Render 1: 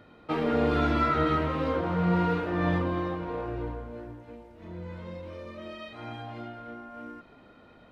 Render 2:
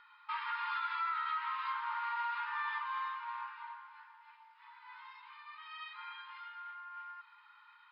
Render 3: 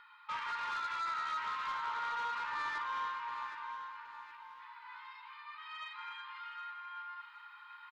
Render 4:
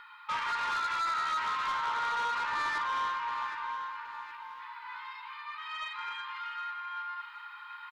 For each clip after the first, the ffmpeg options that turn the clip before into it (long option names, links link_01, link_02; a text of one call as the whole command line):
ffmpeg -i in.wav -af "aemphasis=mode=reproduction:type=50fm,afftfilt=real='re*between(b*sr/4096,830,5300)':imag='im*between(b*sr/4096,830,5300)':win_size=4096:overlap=0.75,alimiter=level_in=4.5dB:limit=-24dB:level=0:latency=1:release=131,volume=-4.5dB" out.wav
ffmpeg -i in.wav -af "areverse,acompressor=mode=upward:threshold=-52dB:ratio=2.5,areverse,asoftclip=type=tanh:threshold=-35dB,aecho=1:1:767|1534|2301|3068:0.316|0.104|0.0344|0.0114,volume=2dB" out.wav
ffmpeg -i in.wav -af "asoftclip=type=tanh:threshold=-33dB,volume=7.5dB" out.wav